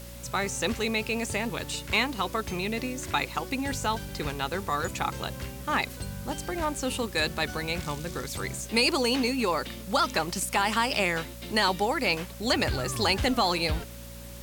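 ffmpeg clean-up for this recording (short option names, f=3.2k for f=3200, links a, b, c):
-af "bandreject=f=58.8:t=h:w=4,bandreject=f=117.6:t=h:w=4,bandreject=f=176.4:t=h:w=4,bandreject=f=235.2:t=h:w=4,bandreject=f=560:w=30,afwtdn=0.004"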